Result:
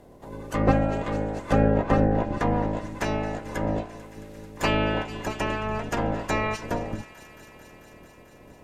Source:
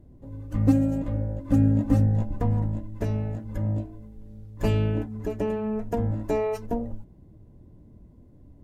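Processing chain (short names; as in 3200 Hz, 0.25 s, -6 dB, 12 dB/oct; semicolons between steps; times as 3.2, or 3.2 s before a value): spectral limiter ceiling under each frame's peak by 26 dB; thin delay 0.221 s, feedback 81%, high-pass 1600 Hz, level -15.5 dB; treble ducked by the level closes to 2200 Hz, closed at -17.5 dBFS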